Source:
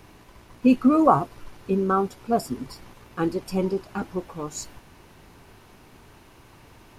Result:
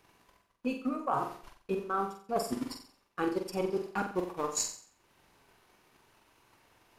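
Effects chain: gate -38 dBFS, range -15 dB; low shelf 300 Hz -12 dB; transient shaper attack +11 dB, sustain -6 dB; reverse; compressor 16:1, threshold -32 dBFS, peak gain reduction 26.5 dB; reverse; flutter echo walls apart 7.7 m, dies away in 0.47 s; gain +3 dB

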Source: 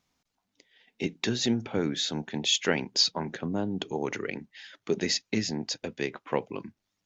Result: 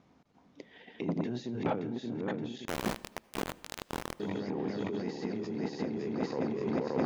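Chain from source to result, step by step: regenerating reverse delay 0.287 s, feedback 79%, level -2 dB; limiter -19 dBFS, peak gain reduction 10.5 dB; negative-ratio compressor -40 dBFS, ratio -1; band-pass 290 Hz, Q 0.53; 2.65–4.2 requantised 6-bit, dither none; on a send at -23 dB: reverb RT60 0.95 s, pre-delay 68 ms; on the sum: core saturation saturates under 620 Hz; gain +8 dB

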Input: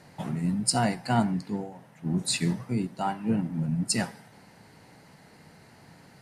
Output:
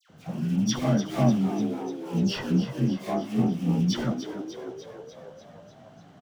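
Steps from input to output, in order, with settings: inharmonic rescaling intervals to 87%; tone controls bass +5 dB, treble 0 dB; in parallel at -6 dB: sample-rate reducer 2900 Hz, jitter 20%; on the sum: high shelf 7200 Hz -6 dB; dispersion lows, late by 95 ms, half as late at 1700 Hz; on a send: frequency-shifting echo 0.297 s, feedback 64%, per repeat +69 Hz, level -10.5 dB; on the sum: gain -2.5 dB

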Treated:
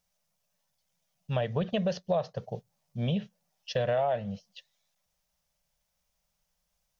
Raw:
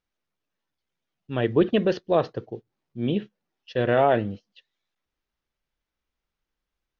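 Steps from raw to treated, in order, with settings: EQ curve 110 Hz 0 dB, 180 Hz +7 dB, 310 Hz -21 dB, 590 Hz +7 dB, 1400 Hz -3 dB, 4000 Hz +3 dB, 5700 Hz +11 dB; compressor 5:1, threshold -29 dBFS, peak gain reduction 15.5 dB; gain +2.5 dB

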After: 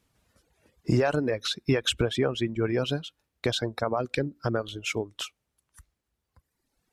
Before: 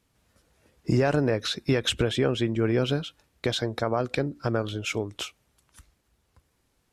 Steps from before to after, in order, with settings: reverb removal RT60 1.9 s

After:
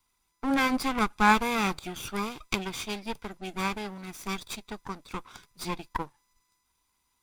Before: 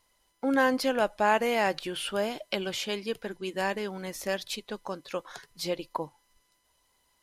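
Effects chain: minimum comb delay 0.84 ms; upward expander 1.5:1, over -39 dBFS; gain +5.5 dB

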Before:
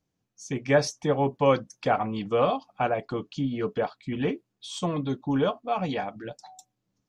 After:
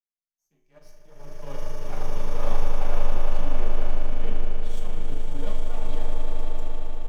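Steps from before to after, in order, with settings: half-wave gain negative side -12 dB; high shelf 7700 Hz +11 dB; resonator 51 Hz, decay 1.1 s, harmonics all, mix 80%; swelling echo 90 ms, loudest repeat 8, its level -8.5 dB; frequency shift +13 Hz; reverb RT60 0.45 s, pre-delay 5 ms, DRR 3 dB; upward expander 2.5:1, over -29 dBFS

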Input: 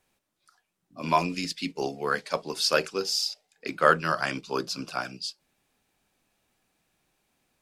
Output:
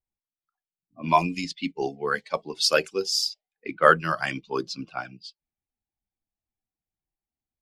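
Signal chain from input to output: per-bin expansion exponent 1.5; low-pass opened by the level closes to 1300 Hz, open at -26 dBFS; gain +4.5 dB

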